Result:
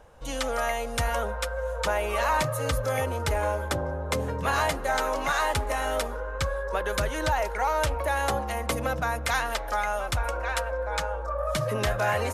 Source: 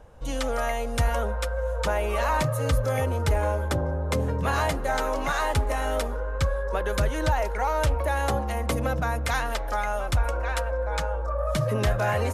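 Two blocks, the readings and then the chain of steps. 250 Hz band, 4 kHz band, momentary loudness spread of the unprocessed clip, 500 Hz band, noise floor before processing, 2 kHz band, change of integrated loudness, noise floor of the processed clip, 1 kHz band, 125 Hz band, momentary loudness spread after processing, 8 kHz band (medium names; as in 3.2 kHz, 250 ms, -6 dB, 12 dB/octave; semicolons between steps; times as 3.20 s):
-4.0 dB, +2.0 dB, 4 LU, -1.0 dB, -29 dBFS, +1.5 dB, -1.0 dB, -34 dBFS, +0.5 dB, -5.5 dB, 5 LU, +2.0 dB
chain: bass shelf 410 Hz -8 dB; trim +2 dB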